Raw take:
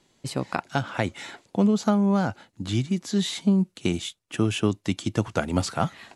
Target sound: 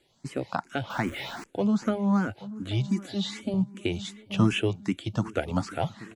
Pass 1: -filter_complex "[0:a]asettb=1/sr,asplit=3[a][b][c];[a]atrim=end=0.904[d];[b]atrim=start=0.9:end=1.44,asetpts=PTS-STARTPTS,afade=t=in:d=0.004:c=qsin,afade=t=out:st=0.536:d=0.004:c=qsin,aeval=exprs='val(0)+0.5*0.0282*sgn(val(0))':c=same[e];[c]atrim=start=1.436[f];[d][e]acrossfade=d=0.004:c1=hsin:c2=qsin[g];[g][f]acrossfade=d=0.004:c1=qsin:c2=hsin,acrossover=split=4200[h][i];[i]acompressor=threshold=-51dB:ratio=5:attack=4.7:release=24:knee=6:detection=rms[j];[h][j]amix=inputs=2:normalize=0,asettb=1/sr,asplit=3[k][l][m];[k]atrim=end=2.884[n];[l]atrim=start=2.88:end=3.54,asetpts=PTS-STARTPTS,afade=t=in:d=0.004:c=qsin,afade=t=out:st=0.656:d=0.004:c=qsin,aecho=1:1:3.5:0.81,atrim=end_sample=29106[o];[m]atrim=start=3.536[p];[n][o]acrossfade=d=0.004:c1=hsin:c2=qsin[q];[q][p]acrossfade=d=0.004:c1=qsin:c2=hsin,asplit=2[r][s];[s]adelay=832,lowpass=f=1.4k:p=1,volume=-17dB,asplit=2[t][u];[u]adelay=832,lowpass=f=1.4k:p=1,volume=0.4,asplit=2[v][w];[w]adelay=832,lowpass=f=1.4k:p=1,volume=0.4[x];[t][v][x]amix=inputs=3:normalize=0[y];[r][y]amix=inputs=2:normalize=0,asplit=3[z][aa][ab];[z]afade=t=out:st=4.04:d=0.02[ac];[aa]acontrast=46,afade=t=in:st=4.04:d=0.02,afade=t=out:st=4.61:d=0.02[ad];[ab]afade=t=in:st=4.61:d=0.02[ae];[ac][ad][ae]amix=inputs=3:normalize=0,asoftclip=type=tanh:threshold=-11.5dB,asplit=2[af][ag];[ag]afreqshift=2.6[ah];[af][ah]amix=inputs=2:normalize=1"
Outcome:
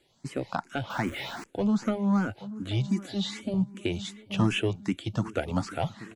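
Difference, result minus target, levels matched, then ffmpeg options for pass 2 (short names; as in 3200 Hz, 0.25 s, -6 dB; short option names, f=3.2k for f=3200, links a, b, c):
soft clip: distortion +18 dB
-filter_complex "[0:a]asettb=1/sr,asplit=3[a][b][c];[a]atrim=end=0.904[d];[b]atrim=start=0.9:end=1.44,asetpts=PTS-STARTPTS,afade=t=in:d=0.004:c=qsin,afade=t=out:st=0.536:d=0.004:c=qsin,aeval=exprs='val(0)+0.5*0.0282*sgn(val(0))':c=same[e];[c]atrim=start=1.436[f];[d][e]acrossfade=d=0.004:c1=hsin:c2=qsin[g];[g][f]acrossfade=d=0.004:c1=qsin:c2=hsin,acrossover=split=4200[h][i];[i]acompressor=threshold=-51dB:ratio=5:attack=4.7:release=24:knee=6:detection=rms[j];[h][j]amix=inputs=2:normalize=0,asettb=1/sr,asplit=3[k][l][m];[k]atrim=end=2.884[n];[l]atrim=start=2.88:end=3.54,asetpts=PTS-STARTPTS,afade=t=in:d=0.004:c=qsin,afade=t=out:st=0.656:d=0.004:c=qsin,aecho=1:1:3.5:0.81,atrim=end_sample=29106[o];[m]atrim=start=3.536[p];[n][o]acrossfade=d=0.004:c1=hsin:c2=qsin[q];[q][p]acrossfade=d=0.004:c1=qsin:c2=hsin,asplit=2[r][s];[s]adelay=832,lowpass=f=1.4k:p=1,volume=-17dB,asplit=2[t][u];[u]adelay=832,lowpass=f=1.4k:p=1,volume=0.4,asplit=2[v][w];[w]adelay=832,lowpass=f=1.4k:p=1,volume=0.4[x];[t][v][x]amix=inputs=3:normalize=0[y];[r][y]amix=inputs=2:normalize=0,asplit=3[z][aa][ab];[z]afade=t=out:st=4.04:d=0.02[ac];[aa]acontrast=46,afade=t=in:st=4.04:d=0.02,afade=t=out:st=4.61:d=0.02[ad];[ab]afade=t=in:st=4.61:d=0.02[ae];[ac][ad][ae]amix=inputs=3:normalize=0,asoftclip=type=tanh:threshold=-0.5dB,asplit=2[af][ag];[ag]afreqshift=2.6[ah];[af][ah]amix=inputs=2:normalize=1"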